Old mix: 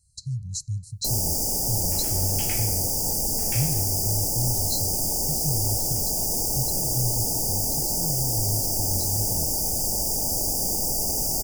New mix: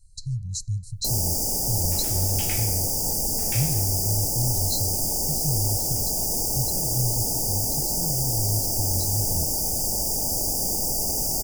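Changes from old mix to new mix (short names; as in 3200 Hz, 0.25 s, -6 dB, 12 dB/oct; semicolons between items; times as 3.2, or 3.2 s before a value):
speech: remove HPF 87 Hz 12 dB/oct; second sound: send +7.0 dB; master: remove notch 3700 Hz, Q 7.5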